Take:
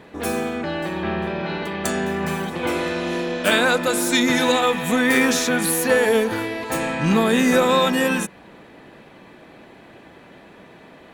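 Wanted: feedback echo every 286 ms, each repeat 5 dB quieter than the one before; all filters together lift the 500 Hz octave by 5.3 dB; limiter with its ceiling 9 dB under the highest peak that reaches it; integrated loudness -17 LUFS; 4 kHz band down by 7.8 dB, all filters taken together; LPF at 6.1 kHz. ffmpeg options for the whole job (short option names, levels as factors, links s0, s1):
-af "lowpass=6100,equalizer=f=500:t=o:g=6,equalizer=f=4000:t=o:g=-9,alimiter=limit=0.316:level=0:latency=1,aecho=1:1:286|572|858|1144|1430|1716|2002:0.562|0.315|0.176|0.0988|0.0553|0.031|0.0173,volume=1.26"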